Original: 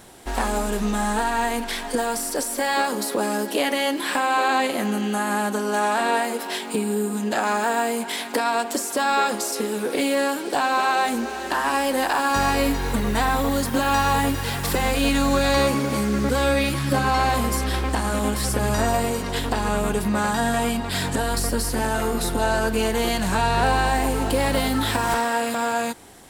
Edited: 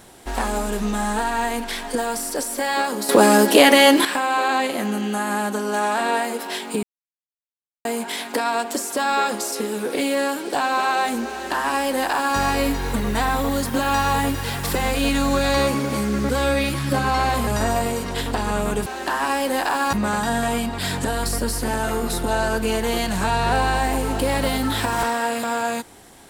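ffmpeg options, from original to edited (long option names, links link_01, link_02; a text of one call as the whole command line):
ffmpeg -i in.wav -filter_complex "[0:a]asplit=8[link_01][link_02][link_03][link_04][link_05][link_06][link_07][link_08];[link_01]atrim=end=3.092[link_09];[link_02]atrim=start=3.088:end=4.052,asetpts=PTS-STARTPTS,volume=10.5dB[link_10];[link_03]atrim=start=4.048:end=6.83,asetpts=PTS-STARTPTS,afade=type=out:start_time=2.778:duration=0.004:curve=hsin[link_11];[link_04]atrim=start=6.83:end=7.85,asetpts=PTS-STARTPTS,volume=0[link_12];[link_05]atrim=start=7.85:end=17.472,asetpts=PTS-STARTPTS,afade=type=in:duration=0.004:curve=hsin[link_13];[link_06]atrim=start=18.648:end=20.042[link_14];[link_07]atrim=start=11.298:end=12.372[link_15];[link_08]atrim=start=20.038[link_16];[link_09][link_10]acrossfade=duration=0.004:curve1=hsin:curve2=hsin[link_17];[link_11][link_12][link_13]concat=n=3:v=0:a=1[link_18];[link_17][link_18]acrossfade=duration=0.004:curve1=hsin:curve2=hsin[link_19];[link_19][link_14]acrossfade=duration=0.004:curve1=hsin:curve2=hsin[link_20];[link_20][link_15]acrossfade=duration=0.004:curve1=hsin:curve2=hsin[link_21];[link_21][link_16]acrossfade=duration=0.004:curve1=hsin:curve2=hsin" out.wav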